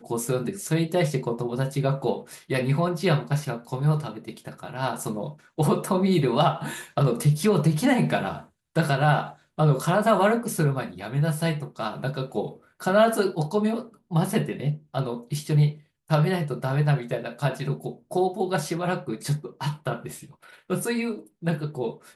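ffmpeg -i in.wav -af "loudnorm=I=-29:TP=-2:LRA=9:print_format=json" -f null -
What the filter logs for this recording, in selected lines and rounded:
"input_i" : "-25.8",
"input_tp" : "-6.8",
"input_lra" : "7.1",
"input_thresh" : "-36.0",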